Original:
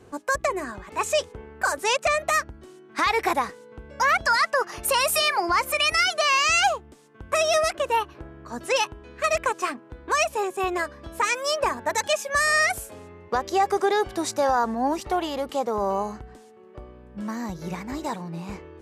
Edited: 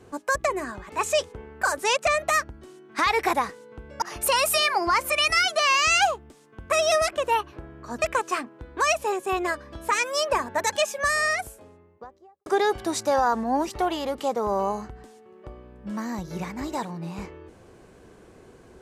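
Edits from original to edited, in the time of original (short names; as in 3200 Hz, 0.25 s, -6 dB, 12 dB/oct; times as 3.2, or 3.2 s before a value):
4.02–4.64 cut
8.64–9.33 cut
12.11–13.77 studio fade out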